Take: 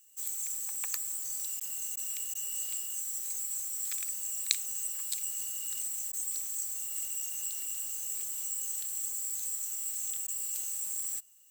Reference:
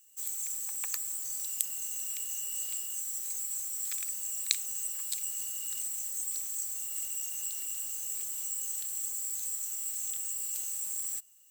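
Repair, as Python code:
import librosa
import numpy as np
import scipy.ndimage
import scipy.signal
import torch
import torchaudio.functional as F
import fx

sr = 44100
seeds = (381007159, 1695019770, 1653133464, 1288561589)

y = fx.fix_interpolate(x, sr, at_s=(1.6, 1.96, 2.34, 6.12, 10.27), length_ms=10.0)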